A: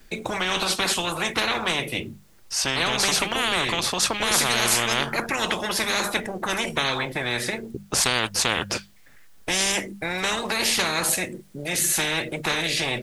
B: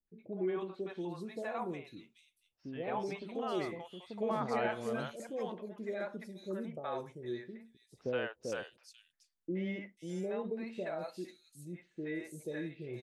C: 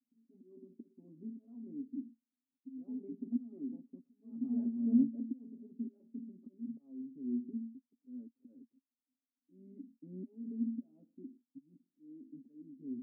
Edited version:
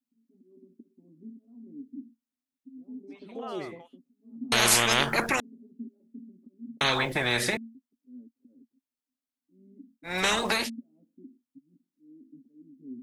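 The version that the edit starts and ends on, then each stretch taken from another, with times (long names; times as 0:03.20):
C
0:03.19–0:03.86: punch in from B, crossfade 0.24 s
0:04.52–0:05.40: punch in from A
0:06.81–0:07.57: punch in from A
0:10.11–0:10.62: punch in from A, crossfade 0.16 s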